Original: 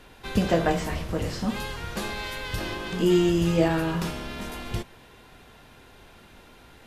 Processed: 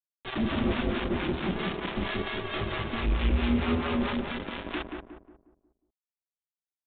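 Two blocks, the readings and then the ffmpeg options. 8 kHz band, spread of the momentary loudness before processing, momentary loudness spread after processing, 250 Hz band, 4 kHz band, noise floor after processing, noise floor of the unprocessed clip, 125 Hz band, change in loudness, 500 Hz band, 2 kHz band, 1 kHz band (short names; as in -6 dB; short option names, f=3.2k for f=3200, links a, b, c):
under -40 dB, 13 LU, 9 LU, -3.5 dB, -1.5 dB, under -85 dBFS, -52 dBFS, -4.0 dB, -3.5 dB, -6.5 dB, -1.0 dB, -2.5 dB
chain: -filter_complex "[0:a]adynamicequalizer=threshold=0.0112:dfrequency=140:dqfactor=3.1:tfrequency=140:tqfactor=3.1:attack=5:release=100:ratio=0.375:range=2:mode=cutabove:tftype=bell,afreqshift=-410,aresample=11025,acrusher=bits=4:mix=0:aa=0.000001,aresample=44100,volume=25.5dB,asoftclip=hard,volume=-25.5dB,acrossover=split=600[a][b];[a]aeval=exprs='val(0)*(1-0.7/2+0.7/2*cos(2*PI*4.5*n/s))':c=same[c];[b]aeval=exprs='val(0)*(1-0.7/2-0.7/2*cos(2*PI*4.5*n/s))':c=same[d];[c][d]amix=inputs=2:normalize=0,flanger=delay=1.5:depth=4.3:regen=-52:speed=0.39:shape=triangular,asplit=2[e][f];[f]adelay=180,lowpass=f=1.1k:p=1,volume=-3dB,asplit=2[g][h];[h]adelay=180,lowpass=f=1.1k:p=1,volume=0.44,asplit=2[i][j];[j]adelay=180,lowpass=f=1.1k:p=1,volume=0.44,asplit=2[k][l];[l]adelay=180,lowpass=f=1.1k:p=1,volume=0.44,asplit=2[m][n];[n]adelay=180,lowpass=f=1.1k:p=1,volume=0.44,asplit=2[o][p];[p]adelay=180,lowpass=f=1.1k:p=1,volume=0.44[q];[e][g][i][k][m][o][q]amix=inputs=7:normalize=0,aresample=8000,aresample=44100,volume=7.5dB"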